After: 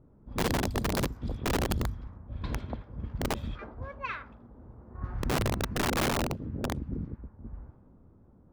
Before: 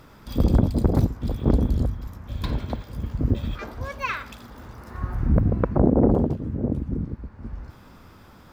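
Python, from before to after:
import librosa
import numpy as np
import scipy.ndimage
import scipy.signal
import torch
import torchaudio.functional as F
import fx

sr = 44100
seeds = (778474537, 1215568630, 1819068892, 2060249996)

y = fx.env_lowpass(x, sr, base_hz=400.0, full_db=-19.0)
y = (np.mod(10.0 ** (14.5 / 20.0) * y + 1.0, 2.0) - 1.0) / 10.0 ** (14.5 / 20.0)
y = y * librosa.db_to_amplitude(-7.5)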